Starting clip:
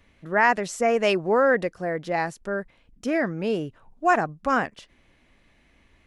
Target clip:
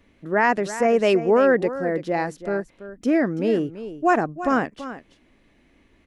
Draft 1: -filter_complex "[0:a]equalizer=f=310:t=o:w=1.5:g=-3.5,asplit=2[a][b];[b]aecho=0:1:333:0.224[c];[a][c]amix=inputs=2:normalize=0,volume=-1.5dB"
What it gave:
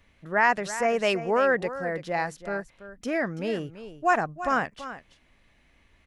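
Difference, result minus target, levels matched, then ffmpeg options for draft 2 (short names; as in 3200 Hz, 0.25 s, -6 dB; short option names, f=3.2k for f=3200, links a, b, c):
250 Hz band -5.5 dB
-filter_complex "[0:a]equalizer=f=310:t=o:w=1.5:g=8.5,asplit=2[a][b];[b]aecho=0:1:333:0.224[c];[a][c]amix=inputs=2:normalize=0,volume=-1.5dB"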